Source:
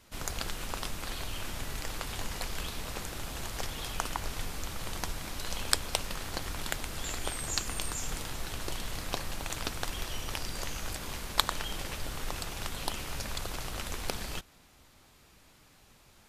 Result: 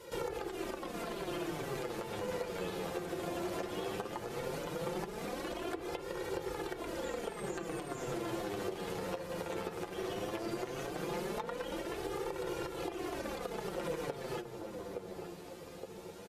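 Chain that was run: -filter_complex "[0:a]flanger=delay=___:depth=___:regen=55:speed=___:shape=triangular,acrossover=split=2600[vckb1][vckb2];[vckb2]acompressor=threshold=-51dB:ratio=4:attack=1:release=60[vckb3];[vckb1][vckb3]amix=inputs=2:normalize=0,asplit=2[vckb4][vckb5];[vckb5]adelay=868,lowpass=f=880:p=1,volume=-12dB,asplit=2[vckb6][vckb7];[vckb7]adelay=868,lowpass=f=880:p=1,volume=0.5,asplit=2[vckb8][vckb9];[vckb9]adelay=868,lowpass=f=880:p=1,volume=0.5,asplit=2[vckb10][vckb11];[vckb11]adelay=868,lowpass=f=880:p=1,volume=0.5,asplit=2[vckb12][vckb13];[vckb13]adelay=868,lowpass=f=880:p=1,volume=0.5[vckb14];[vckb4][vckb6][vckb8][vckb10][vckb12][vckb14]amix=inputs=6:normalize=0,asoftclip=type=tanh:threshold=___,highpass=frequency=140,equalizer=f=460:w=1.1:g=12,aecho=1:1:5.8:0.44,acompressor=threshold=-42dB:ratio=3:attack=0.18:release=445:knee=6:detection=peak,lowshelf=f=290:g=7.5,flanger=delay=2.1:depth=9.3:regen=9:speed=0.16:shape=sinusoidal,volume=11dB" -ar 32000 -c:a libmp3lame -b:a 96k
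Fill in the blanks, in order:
2, 1, 0.43, -25.5dB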